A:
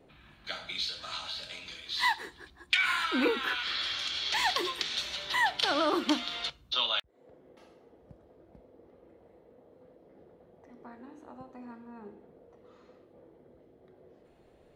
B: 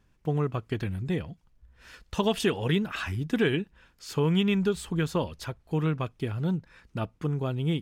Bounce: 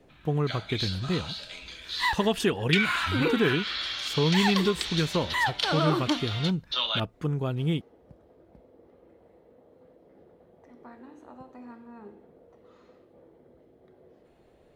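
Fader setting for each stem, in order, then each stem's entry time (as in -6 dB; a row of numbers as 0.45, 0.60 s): +1.0, +0.5 dB; 0.00, 0.00 s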